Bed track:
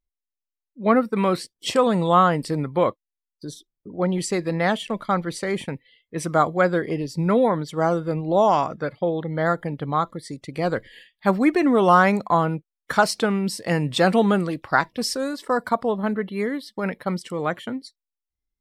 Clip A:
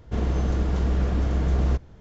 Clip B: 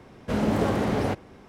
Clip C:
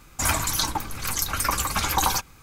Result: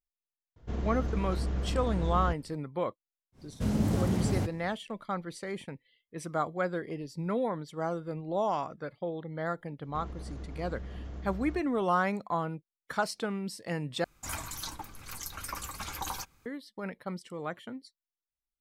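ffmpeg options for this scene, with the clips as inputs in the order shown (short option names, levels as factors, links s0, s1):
-filter_complex "[1:a]asplit=2[s0][s1];[0:a]volume=0.251[s2];[2:a]bass=f=250:g=14,treble=f=4000:g=13[s3];[s1]alimiter=limit=0.0944:level=0:latency=1:release=238[s4];[s2]asplit=2[s5][s6];[s5]atrim=end=14.044[s7];[3:a]atrim=end=2.42,asetpts=PTS-STARTPTS,volume=0.188[s8];[s6]atrim=start=16.456[s9];[s0]atrim=end=2,asetpts=PTS-STARTPTS,volume=0.355,afade=t=in:d=0.004:c=hsin,afade=t=out:st=1.996:d=0.004:c=hsin,adelay=560[s10];[s3]atrim=end=1.48,asetpts=PTS-STARTPTS,volume=0.251,afade=t=in:d=0.1,afade=t=out:st=1.38:d=0.1,adelay=3320[s11];[s4]atrim=end=2,asetpts=PTS-STARTPTS,volume=0.224,afade=t=in:d=0.004:c=hsin,afade=t=out:st=1.996:d=0.004:c=hsin,adelay=9830[s12];[s7][s8]acrossfade=d=0.004:c1=hsin:c2=hsin[s13];[s13][s9]acrossfade=d=0.004:c1=hsin:c2=hsin[s14];[s14][s10][s11][s12]amix=inputs=4:normalize=0"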